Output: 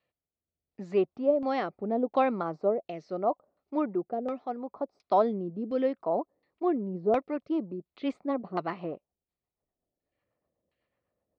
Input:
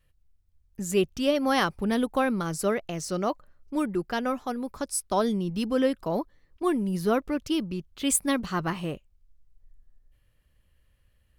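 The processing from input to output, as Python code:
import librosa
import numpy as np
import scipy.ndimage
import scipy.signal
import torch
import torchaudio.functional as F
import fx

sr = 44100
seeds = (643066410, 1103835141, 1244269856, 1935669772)

y = fx.rotary_switch(x, sr, hz=0.75, then_hz=8.0, switch_at_s=6.8)
y = fx.cabinet(y, sr, low_hz=280.0, low_slope=12, high_hz=5700.0, hz=(700.0, 1600.0, 3000.0, 4300.0), db=(7, -10, -6, 6))
y = fx.filter_lfo_lowpass(y, sr, shape='saw_down', hz=1.4, low_hz=520.0, high_hz=3100.0, q=1.1)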